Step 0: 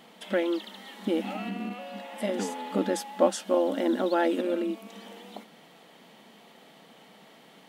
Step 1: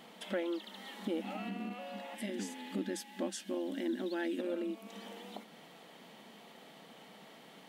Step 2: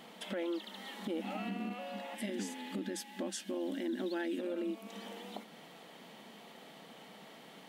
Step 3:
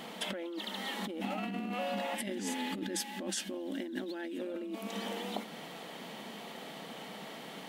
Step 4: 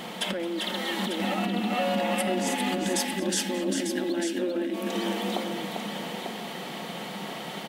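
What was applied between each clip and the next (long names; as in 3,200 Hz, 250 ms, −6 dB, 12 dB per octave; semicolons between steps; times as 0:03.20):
gain on a spectral selection 0:02.15–0:04.39, 390–1,500 Hz −10 dB; downward compressor 1.5 to 1, threshold −44 dBFS, peak gain reduction 8 dB; level −1.5 dB
brickwall limiter −30.5 dBFS, peak gain reduction 7 dB; level +1.5 dB
compressor whose output falls as the input rises −42 dBFS, ratio −1; level +5 dB
on a send: multi-tap delay 218/397/896 ms −18/−5.5/−7.5 dB; on the sum: rectangular room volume 2,800 cubic metres, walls furnished, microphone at 0.95 metres; level +7 dB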